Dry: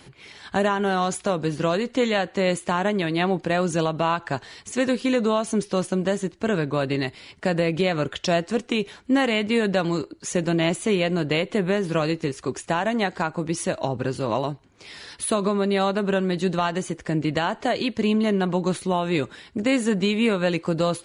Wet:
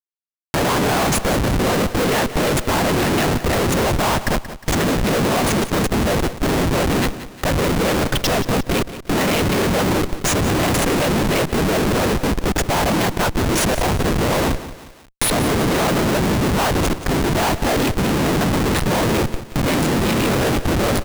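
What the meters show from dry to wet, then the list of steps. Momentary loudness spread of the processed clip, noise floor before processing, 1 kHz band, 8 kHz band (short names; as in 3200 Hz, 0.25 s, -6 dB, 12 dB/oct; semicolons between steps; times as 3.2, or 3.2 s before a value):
3 LU, -52 dBFS, +6.0 dB, +11.0 dB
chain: gate with hold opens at -29 dBFS; limiter -16 dBFS, peak gain reduction 5 dB; whisperiser; Schmitt trigger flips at -31.5 dBFS; on a send: feedback echo 0.179 s, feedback 35%, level -13.5 dB; on the sum: mismatched tape noise reduction encoder only; gain +8.5 dB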